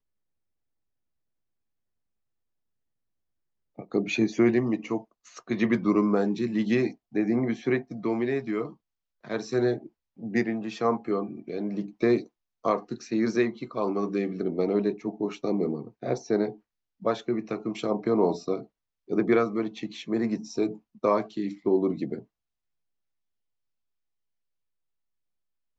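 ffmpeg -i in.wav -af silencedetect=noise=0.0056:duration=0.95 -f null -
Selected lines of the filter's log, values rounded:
silence_start: 0.00
silence_end: 3.78 | silence_duration: 3.78
silence_start: 22.23
silence_end: 25.78 | silence_duration: 3.55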